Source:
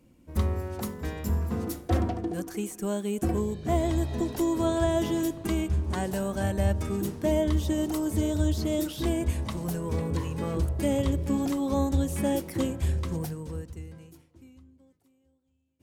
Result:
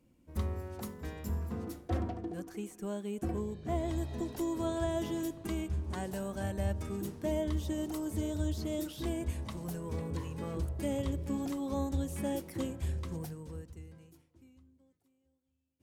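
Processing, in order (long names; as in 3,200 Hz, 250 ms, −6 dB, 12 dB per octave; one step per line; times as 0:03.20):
0:01.52–0:03.88: high-shelf EQ 5,300 Hz −6.5 dB
level −8 dB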